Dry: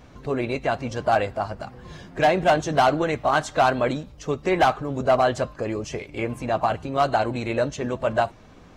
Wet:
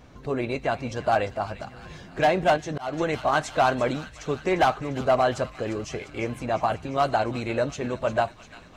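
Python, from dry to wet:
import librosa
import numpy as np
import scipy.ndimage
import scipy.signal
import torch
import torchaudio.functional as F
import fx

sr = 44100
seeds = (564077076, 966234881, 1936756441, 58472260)

y = fx.echo_wet_highpass(x, sr, ms=349, feedback_pct=67, hz=1800.0, wet_db=-12.0)
y = fx.auto_swell(y, sr, attack_ms=309.0, at=(2.56, 2.97), fade=0.02)
y = y * 10.0 ** (-2.0 / 20.0)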